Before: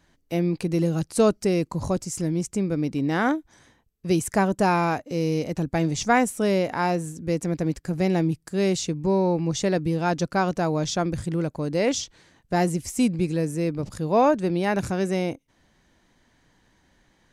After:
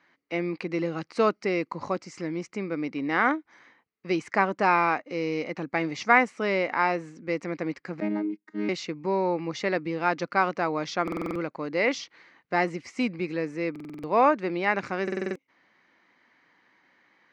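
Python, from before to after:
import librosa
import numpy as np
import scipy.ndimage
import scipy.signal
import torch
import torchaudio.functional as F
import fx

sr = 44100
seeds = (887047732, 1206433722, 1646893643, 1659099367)

y = fx.chord_vocoder(x, sr, chord='bare fifth', root=56, at=(8.0, 8.69))
y = fx.cabinet(y, sr, low_hz=330.0, low_slope=12, high_hz=4500.0, hz=(420.0, 640.0, 1200.0, 2100.0, 3500.0), db=(-3, -4, 6, 9, -7))
y = fx.buffer_glitch(y, sr, at_s=(11.03, 13.71, 15.03), block=2048, repeats=6)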